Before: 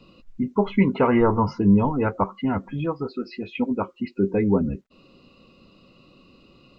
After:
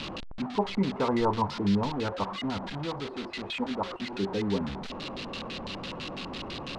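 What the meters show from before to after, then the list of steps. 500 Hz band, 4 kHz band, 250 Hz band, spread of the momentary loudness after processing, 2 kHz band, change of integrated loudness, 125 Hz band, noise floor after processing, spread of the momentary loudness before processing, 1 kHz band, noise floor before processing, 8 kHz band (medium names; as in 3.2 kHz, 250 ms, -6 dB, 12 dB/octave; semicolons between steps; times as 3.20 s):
-7.5 dB, +9.5 dB, -8.5 dB, 10 LU, -3.0 dB, -8.5 dB, -8.5 dB, -39 dBFS, 12 LU, -4.5 dB, -56 dBFS, no reading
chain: one-bit delta coder 64 kbps, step -23.5 dBFS; LFO low-pass square 6 Hz 930–3900 Hz; trim -9 dB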